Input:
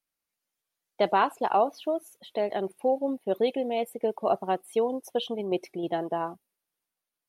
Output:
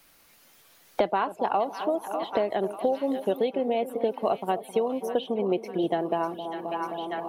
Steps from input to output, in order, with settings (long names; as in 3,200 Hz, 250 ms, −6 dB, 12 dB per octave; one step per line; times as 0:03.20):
parametric band 8,600 Hz −4.5 dB 1.4 octaves
on a send: echo with a time of its own for lows and highs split 920 Hz, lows 264 ms, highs 595 ms, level −14 dB
on the sum: multiband upward and downward compressor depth 100%